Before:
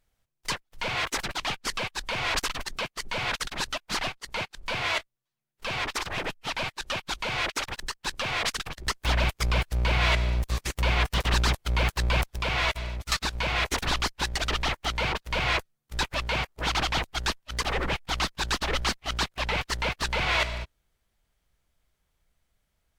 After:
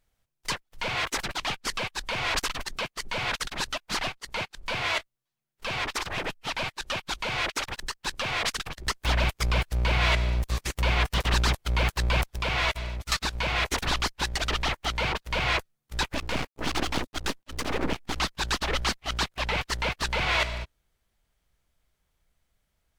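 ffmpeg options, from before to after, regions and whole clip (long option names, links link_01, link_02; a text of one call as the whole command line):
ffmpeg -i in.wav -filter_complex "[0:a]asettb=1/sr,asplit=3[link_01][link_02][link_03];[link_01]atrim=end=16.144[link_04];[link_02]atrim=start=16.14:end=18.2,asetpts=PTS-STARTPTS,afade=type=in:duration=0.004:curve=qsin,afade=type=out:start_time=2.056:duration=0.004:curve=qsin,equalizer=frequency=270:width_type=o:width=1.2:gain=14,aeval=exprs='max(val(0),0)':channel_layout=same[link_05];[link_03]atrim=start=18.196[link_06];[link_04][link_05]acrossfade=duration=0.004:curve1=hsin:curve2=qsin[link_07];[link_07][link_06]acrossfade=duration=0.004:curve1=qsin:curve2=hsin" out.wav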